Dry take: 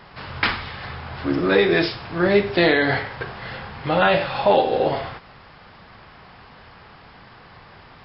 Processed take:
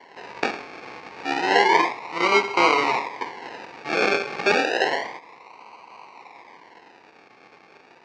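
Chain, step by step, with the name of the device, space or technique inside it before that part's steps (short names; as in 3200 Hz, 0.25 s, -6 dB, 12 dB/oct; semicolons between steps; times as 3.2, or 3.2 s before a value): circuit-bent sampling toy (decimation with a swept rate 35×, swing 60% 0.3 Hz; speaker cabinet 590–4700 Hz, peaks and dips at 600 Hz -9 dB, 980 Hz +9 dB, 1400 Hz -8 dB, 2200 Hz +6 dB, 3400 Hz -9 dB); gain +4 dB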